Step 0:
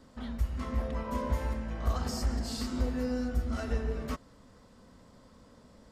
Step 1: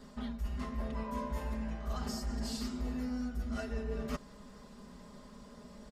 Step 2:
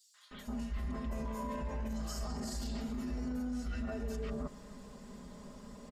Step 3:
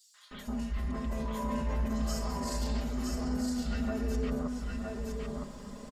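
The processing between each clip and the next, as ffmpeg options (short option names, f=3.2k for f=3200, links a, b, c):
-af "aecho=1:1:4.9:0.8,areverse,acompressor=threshold=-36dB:ratio=6,areverse,volume=2dB"
-filter_complex "[0:a]equalizer=f=7k:w=4.8:g=4,acrossover=split=1300|4300[a][b][c];[b]adelay=140[d];[a]adelay=310[e];[e][d][c]amix=inputs=3:normalize=0,alimiter=level_in=9.5dB:limit=-24dB:level=0:latency=1:release=23,volume=-9.5dB,volume=2.5dB"
-af "aecho=1:1:964:0.708,volume=4dB"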